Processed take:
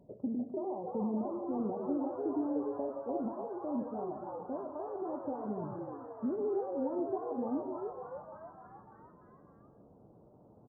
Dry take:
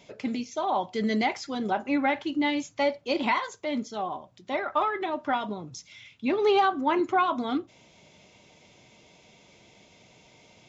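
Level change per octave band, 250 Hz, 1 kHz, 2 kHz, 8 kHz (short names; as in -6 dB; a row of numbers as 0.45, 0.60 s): -6.0 dB, -15.0 dB, under -30 dB, n/a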